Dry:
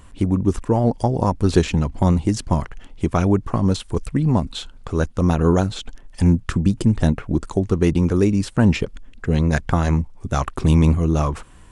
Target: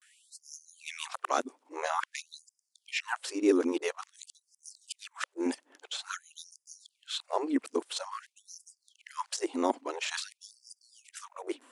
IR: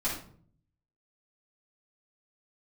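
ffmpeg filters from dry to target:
-af "areverse,afftfilt=real='re*gte(b*sr/1024,220*pow(4800/220,0.5+0.5*sin(2*PI*0.49*pts/sr)))':imag='im*gte(b*sr/1024,220*pow(4800/220,0.5+0.5*sin(2*PI*0.49*pts/sr)))':win_size=1024:overlap=0.75,volume=-4.5dB"

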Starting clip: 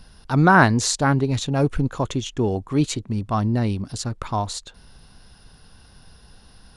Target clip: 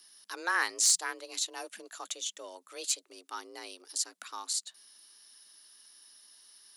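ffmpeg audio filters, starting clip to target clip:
-af "aderivative,aeval=exprs='0.531*(cos(1*acos(clip(val(0)/0.531,-1,1)))-cos(1*PI/2))+0.133*(cos(5*acos(clip(val(0)/0.531,-1,1)))-cos(5*PI/2))':c=same,afreqshift=170,volume=-5.5dB"

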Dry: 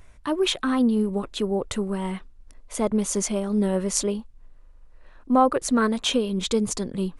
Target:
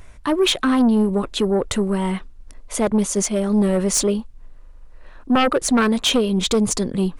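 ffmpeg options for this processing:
-filter_complex "[0:a]asplit=3[a][b][c];[a]afade=t=out:st=2.79:d=0.02[d];[b]agate=range=-33dB:threshold=-22dB:ratio=3:detection=peak,afade=t=in:st=2.79:d=0.02,afade=t=out:st=3.37:d=0.02[e];[c]afade=t=in:st=3.37:d=0.02[f];[d][e][f]amix=inputs=3:normalize=0,aeval=exprs='0.668*sin(PI/2*3.98*val(0)/0.668)':c=same,volume=-8.5dB"

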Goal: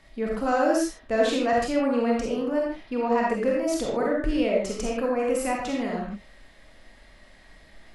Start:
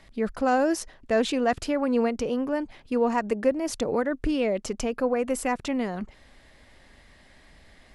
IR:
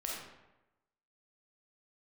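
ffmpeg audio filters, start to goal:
-filter_complex "[0:a]asettb=1/sr,asplit=3[a][b][c];[a]atrim=end=2.784[d];[b]atrim=start=2.78:end=3.27,asetpts=PTS-STARTPTS,afade=t=in:d=0.004:c=qsin,afade=t=out:st=0.486:d=0.004:c=qsin,highshelf=f=5.5k:t=q:w=1.5:g=-6.5[e];[c]atrim=start=3.266[f];[d][e]acrossfade=d=0.004:c1=hsin:c2=qsin[g];[g][f]acrossfade=d=0.004:c1=qsin:c2=hsin[h];[1:a]atrim=start_sample=2205,afade=t=out:st=0.21:d=0.01,atrim=end_sample=9702[i];[h][i]afir=irnorm=-1:irlink=0"

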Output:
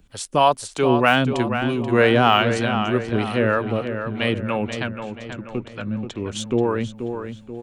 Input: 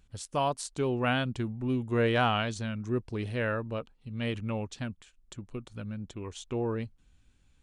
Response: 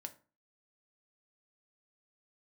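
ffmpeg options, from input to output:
-filter_complex "[0:a]asettb=1/sr,asplit=3[a][b][c];[a]atrim=end=4.774[d];[b]atrim=start=4.77:end=6.21,asetpts=PTS-STARTPTS,afade=t=in:d=0.004:c=qsin,afade=t=out:st=1.436:d=0.004:c=qsin,lowpass=5.9k[e];[c]atrim=start=6.206[f];[d][e]acrossfade=d=0.004:c1=hsin:c2=qsin[g];[g][f]acrossfade=d=0.004:c1=qsin:c2=hsin,acrossover=split=160|4000[h][i][j];[i]acontrast=75[k];[h][k][j]amix=inputs=3:normalize=0,acrossover=split=490[l][m];[l]aeval=exprs='val(0)*(1-0.7/2+0.7/2*cos(2*PI*3.2*n/s))':c=same[n];[m]aeval=exprs='val(0)*(1-0.7/2-0.7/2*cos(2*PI*3.2*n/s))':c=same[o];[n][o]amix=inputs=2:normalize=0,deesser=0.75,crystalizer=i=1:c=0,asplit=2[p][q];[q]adelay=483,lowpass=f=3.3k:p=1,volume=-8dB,asplit=2[r][s];[s]adelay=483,lowpass=f=3.3k:p=1,volume=0.5,asplit=2[t][u];[u]adelay=483,lowpass=f=3.3k:p=1,volume=0.5,asplit=2[v][w];[w]adelay=483,lowpass=f=3.3k:p=1,volume=0.5,asplit=2[x][y];[y]adelay=483,lowpass=f=3.3k:p=1,volume=0.5,asplit=2[z][aa];[aa]adelay=483,lowpass=f=3.3k:p=1,volume=0.5[ab];[p][r][t][v][x][z][ab]amix=inputs=7:normalize=0,volume=8dB"

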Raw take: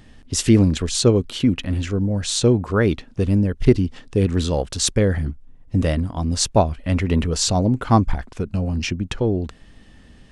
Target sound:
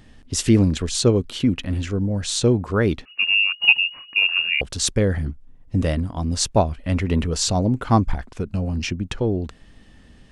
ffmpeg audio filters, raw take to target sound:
-filter_complex "[0:a]asettb=1/sr,asplit=3[a][b][c];[a]atrim=end=3.054[d];[b]atrim=start=3.05:end=4.61,asetpts=PTS-STARTPTS,afade=t=in:d=0.004:c=qsin,afade=t=out:st=1.556:d=0.004:c=qsin,lowpass=f=2.5k:t=q:w=0.5098,lowpass=f=2.5k:t=q:w=0.6013,lowpass=f=2.5k:t=q:w=0.9,lowpass=f=2.5k:t=q:w=2.563,afreqshift=-2900[e];[c]atrim=start=4.606[f];[d][e]acrossfade=d=0.004:c1=hsin:c2=qsin[g];[g][f]acrossfade=d=0.004:c1=qsin:c2=hsin,volume=-1.5dB"

